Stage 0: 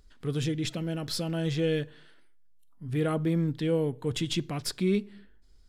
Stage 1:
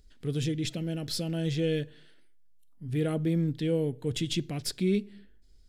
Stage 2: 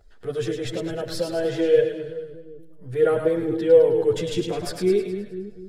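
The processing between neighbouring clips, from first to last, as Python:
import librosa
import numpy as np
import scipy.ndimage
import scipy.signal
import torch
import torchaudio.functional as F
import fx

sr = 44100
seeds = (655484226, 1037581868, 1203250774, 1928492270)

y1 = fx.peak_eq(x, sr, hz=1100.0, db=-10.5, octaves=1.0)
y2 = fx.band_shelf(y1, sr, hz=820.0, db=12.5, octaves=2.5)
y2 = fx.echo_split(y2, sr, split_hz=430.0, low_ms=249, high_ms=105, feedback_pct=52, wet_db=-5.5)
y2 = fx.chorus_voices(y2, sr, voices=6, hz=0.52, base_ms=10, depth_ms=1.7, mix_pct=55)
y2 = F.gain(torch.from_numpy(y2), 2.0).numpy()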